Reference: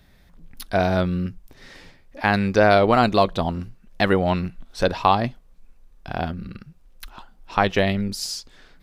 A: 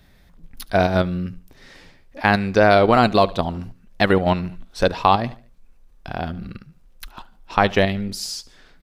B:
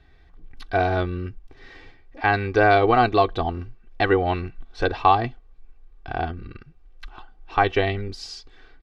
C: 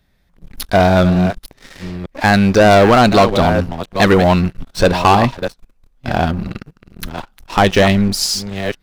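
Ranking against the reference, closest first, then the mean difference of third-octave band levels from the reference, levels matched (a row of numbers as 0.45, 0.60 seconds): A, B, C; 1.5, 3.5, 5.5 decibels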